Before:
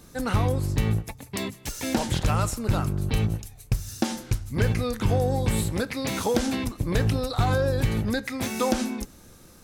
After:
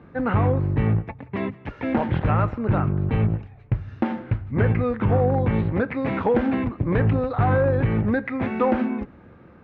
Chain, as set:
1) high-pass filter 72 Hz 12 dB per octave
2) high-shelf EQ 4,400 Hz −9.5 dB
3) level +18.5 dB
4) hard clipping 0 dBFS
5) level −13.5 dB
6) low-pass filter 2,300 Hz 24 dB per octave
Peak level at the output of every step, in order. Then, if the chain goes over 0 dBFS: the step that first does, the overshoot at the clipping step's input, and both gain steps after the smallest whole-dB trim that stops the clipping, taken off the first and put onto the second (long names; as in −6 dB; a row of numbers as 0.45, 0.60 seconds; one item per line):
−10.0, −10.5, +8.0, 0.0, −13.5, −12.5 dBFS
step 3, 8.0 dB
step 3 +10.5 dB, step 5 −5.5 dB